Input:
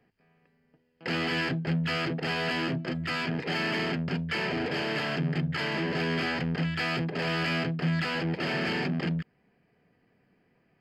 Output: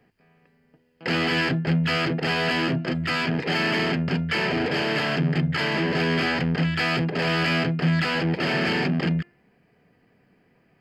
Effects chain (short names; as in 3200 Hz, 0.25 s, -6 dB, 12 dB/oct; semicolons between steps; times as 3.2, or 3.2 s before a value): de-hum 349 Hz, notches 8; gain +6 dB